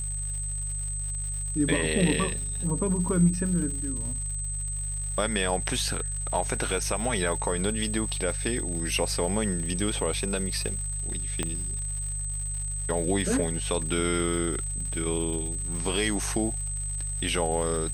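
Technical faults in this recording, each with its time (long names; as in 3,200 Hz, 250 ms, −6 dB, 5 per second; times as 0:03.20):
surface crackle 200 per second −36 dBFS
mains hum 50 Hz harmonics 3 −34 dBFS
whistle 8,200 Hz −32 dBFS
0:11.43: click −14 dBFS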